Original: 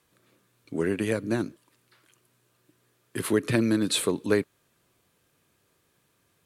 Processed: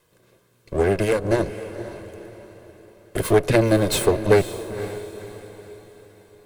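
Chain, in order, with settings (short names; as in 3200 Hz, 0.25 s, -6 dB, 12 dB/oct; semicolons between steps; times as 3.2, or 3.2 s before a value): minimum comb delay 1.9 ms; bell 260 Hz +8.5 dB 2.4 oct; diffused feedback echo 0.509 s, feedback 43%, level -12.5 dB; gain +4.5 dB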